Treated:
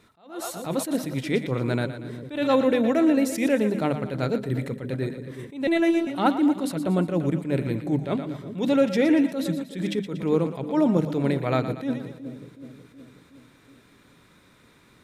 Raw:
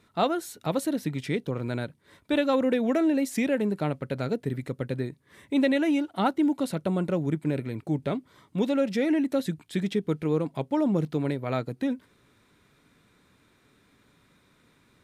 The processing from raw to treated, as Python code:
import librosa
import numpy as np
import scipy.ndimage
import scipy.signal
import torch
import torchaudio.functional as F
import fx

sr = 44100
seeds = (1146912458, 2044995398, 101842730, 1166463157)

p1 = fx.hum_notches(x, sr, base_hz=50, count=5)
p2 = fx.rider(p1, sr, range_db=10, speed_s=2.0)
p3 = p1 + (p2 * librosa.db_to_amplitude(2.0))
p4 = fx.echo_split(p3, sr, split_hz=480.0, low_ms=371, high_ms=118, feedback_pct=52, wet_db=-11.0)
p5 = fx.robotise(p4, sr, hz=334.0, at=(5.67, 6.07))
p6 = fx.attack_slew(p5, sr, db_per_s=140.0)
y = p6 * librosa.db_to_amplitude(-3.0)